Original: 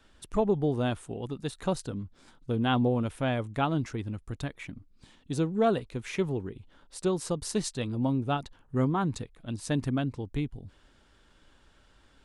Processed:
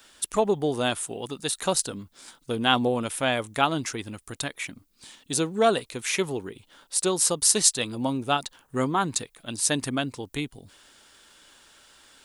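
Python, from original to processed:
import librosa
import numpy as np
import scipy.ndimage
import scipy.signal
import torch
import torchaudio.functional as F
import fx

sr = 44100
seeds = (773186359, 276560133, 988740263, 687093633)

y = fx.riaa(x, sr, side='recording')
y = y * librosa.db_to_amplitude(6.5)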